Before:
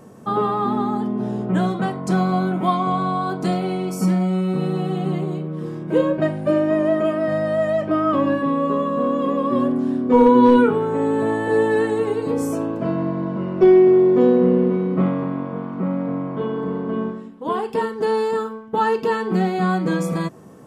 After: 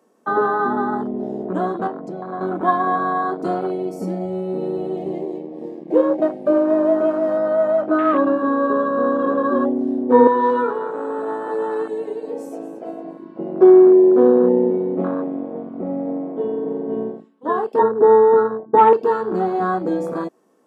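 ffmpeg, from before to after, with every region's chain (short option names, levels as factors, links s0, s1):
-filter_complex "[0:a]asettb=1/sr,asplit=3[s0][s1][s2];[s0]atrim=end=1.874[s3];[s1]atrim=start=1.87:end=2.41,asetpts=PTS-STARTPTS,afade=t=in:d=0.004:c=qsin,afade=t=out:st=0.536:d=0.004:c=qsin,lowpass=f=2800:p=1,acompressor=threshold=0.0708:ratio=4:attack=3.2:release=140:knee=1:detection=peak[s4];[s2]atrim=start=2.406[s5];[s3][s4]acrossfade=d=0.004:c1=hsin:c2=qsin[s6];[s6][s5]acrossfade=d=0.004:c1=qsin:c2=hsin,asettb=1/sr,asplit=3[s7][s8][s9];[s7]atrim=end=4.974[s10];[s8]atrim=start=4.97:end=7.37,asetpts=PTS-STARTPTS,afade=t=in:d=0.004:c=qsin,afade=t=out:st=2.396:d=0.004:c=qsin,equalizer=f=2200:w=4.8:g=4.5,aeval=exprs='sgn(val(0))*max(abs(val(0))-0.00794,0)':c=same,asuperstop=centerf=1400:order=4:qfactor=3.8[s11];[s9]atrim=start=7.366[s12];[s10][s11]acrossfade=d=0.004:c1=hsin:c2=qsin[s13];[s13][s12]acrossfade=d=0.004:c1=qsin:c2=hsin,asettb=1/sr,asplit=3[s14][s15][s16];[s14]atrim=end=10.274[s17];[s15]atrim=start=10.27:end=13.39,asetpts=PTS-STARTPTS,afade=t=in:d=0.004:c=qsin,afade=t=out:st=3.116:d=0.004:c=qsin,highpass=f=950:p=1,aecho=1:1:228|456|684:0.237|0.0783|0.0258,atrim=end_sample=137592[s18];[s16]atrim=start=13.386[s19];[s17][s18]acrossfade=d=0.004:c1=hsin:c2=qsin[s20];[s20][s19]acrossfade=d=0.004:c1=qsin:c2=hsin,asettb=1/sr,asplit=3[s21][s22][s23];[s21]atrim=end=17.794[s24];[s22]atrim=start=17.79:end=18.93,asetpts=PTS-STARTPTS,afade=t=in:d=0.004:c=qsin,afade=t=out:st=1.136:d=0.004:c=qsin,lowpass=f=1200:w=0.5412,lowpass=f=1200:w=1.3066,acontrast=66[s25];[s23]atrim=start=18.926[s26];[s24][s25]acrossfade=d=0.004:c1=hsin:c2=qsin[s27];[s27][s26]acrossfade=d=0.004:c1=qsin:c2=hsin,highpass=f=260:w=0.5412,highpass=f=260:w=1.3066,afwtdn=0.0631,equalizer=f=4500:w=1.5:g=2,volume=1.41"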